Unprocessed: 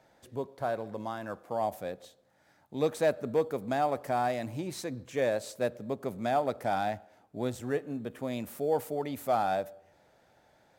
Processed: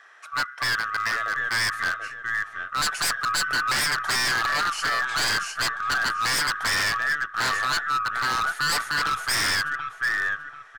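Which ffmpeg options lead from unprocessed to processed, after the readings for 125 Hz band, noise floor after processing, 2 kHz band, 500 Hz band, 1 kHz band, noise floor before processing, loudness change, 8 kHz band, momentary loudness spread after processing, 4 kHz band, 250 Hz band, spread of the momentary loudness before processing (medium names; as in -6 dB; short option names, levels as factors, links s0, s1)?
-0.5 dB, -44 dBFS, +21.5 dB, -11.0 dB, +7.0 dB, -66 dBFS, +8.5 dB, +19.5 dB, 6 LU, +22.0 dB, -7.0 dB, 11 LU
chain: -filter_complex "[0:a]afftfilt=real='real(if(lt(b,960),b+48*(1-2*mod(floor(b/48),2)),b),0)':imag='imag(if(lt(b,960),b+48*(1-2*mod(floor(b/48),2)),b),0)':win_size=2048:overlap=0.75,highpass=f=480:w=0.5412,highpass=f=480:w=1.3066,equalizer=f=540:t=q:w=4:g=-6,equalizer=f=1100:t=q:w=4:g=4,equalizer=f=2200:t=q:w=4:g=7,equalizer=f=7700:t=q:w=4:g=-5,lowpass=f=9500:w=0.5412,lowpass=f=9500:w=1.3066,bandreject=f=4800:w=20,acontrast=67,aeval=exprs='0.398*(cos(1*acos(clip(val(0)/0.398,-1,1)))-cos(1*PI/2))+0.0112*(cos(8*acos(clip(val(0)/0.398,-1,1)))-cos(8*PI/2))':c=same,asplit=2[s0][s1];[s1]adelay=736,lowpass=f=3300:p=1,volume=0.398,asplit=2[s2][s3];[s3]adelay=736,lowpass=f=3300:p=1,volume=0.31,asplit=2[s4][s5];[s5]adelay=736,lowpass=f=3300:p=1,volume=0.31,asplit=2[s6][s7];[s7]adelay=736,lowpass=f=3300:p=1,volume=0.31[s8];[s2][s4][s6][s8]amix=inputs=4:normalize=0[s9];[s0][s9]amix=inputs=2:normalize=0,aeval=exprs='0.075*(abs(mod(val(0)/0.075+3,4)-2)-1)':c=same,volume=1.58"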